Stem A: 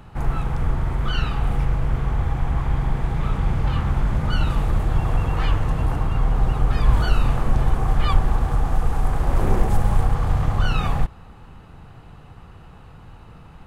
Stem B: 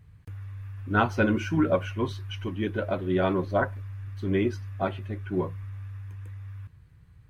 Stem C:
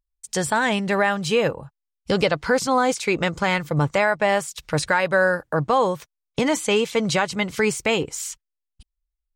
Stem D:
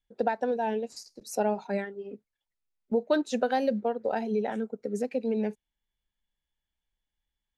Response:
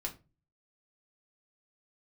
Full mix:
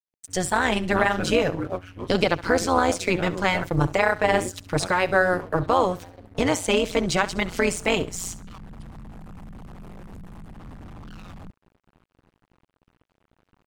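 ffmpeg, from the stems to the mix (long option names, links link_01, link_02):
-filter_complex "[0:a]alimiter=limit=-15.5dB:level=0:latency=1:release=94,volume=26dB,asoftclip=hard,volume=-26dB,adelay=450,volume=-6.5dB[link_01];[1:a]volume=-2.5dB,asplit=2[link_02][link_03];[2:a]volume=2.5dB,asplit=2[link_04][link_05];[link_05]volume=-17dB[link_06];[3:a]adelay=2500,volume=-15.5dB,asplit=2[link_07][link_08];[link_08]volume=-7.5dB[link_09];[link_03]apad=whole_len=622560[link_10];[link_01][link_10]sidechaincompress=threshold=-57dB:ratio=8:attack=16:release=122[link_11];[link_06][link_09]amix=inputs=2:normalize=0,aecho=0:1:67|134|201|268:1|0.26|0.0676|0.0176[link_12];[link_11][link_02][link_04][link_07][link_12]amix=inputs=5:normalize=0,tremolo=f=180:d=0.824,aeval=exprs='sgn(val(0))*max(abs(val(0))-0.00422,0)':channel_layout=same"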